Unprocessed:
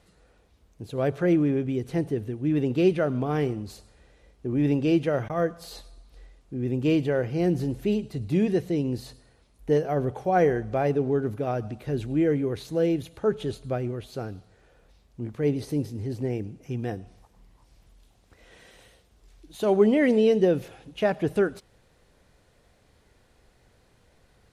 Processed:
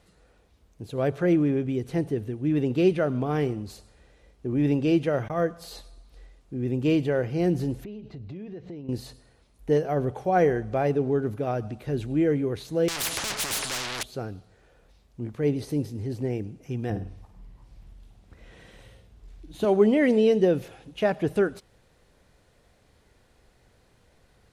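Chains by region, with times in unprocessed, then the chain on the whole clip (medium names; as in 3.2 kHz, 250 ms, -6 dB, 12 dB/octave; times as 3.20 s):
7.84–8.89 s: distance through air 190 m + compression 8:1, threshold -36 dBFS
12.88–14.03 s: overdrive pedal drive 37 dB, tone 2 kHz, clips at -13 dBFS + spectrum-flattening compressor 10:1
16.90–19.65 s: tone controls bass +8 dB, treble -5 dB + doubling 45 ms -13 dB + flutter echo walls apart 9.3 m, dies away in 0.39 s
whole clip: none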